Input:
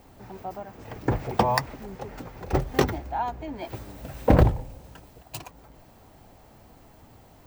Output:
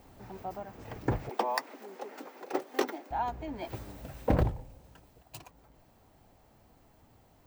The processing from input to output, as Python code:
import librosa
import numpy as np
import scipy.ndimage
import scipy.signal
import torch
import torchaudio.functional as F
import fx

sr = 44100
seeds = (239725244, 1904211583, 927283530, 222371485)

y = fx.rider(x, sr, range_db=3, speed_s=0.5)
y = fx.steep_highpass(y, sr, hz=260.0, slope=36, at=(1.29, 3.11))
y = F.gain(torch.from_numpy(y), -6.5).numpy()